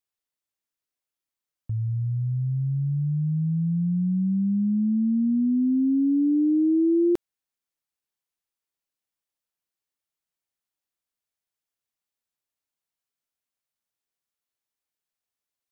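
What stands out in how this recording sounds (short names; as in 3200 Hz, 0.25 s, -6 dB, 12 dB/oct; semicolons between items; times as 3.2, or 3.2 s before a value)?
noise floor -90 dBFS; spectral tilt -7.0 dB/oct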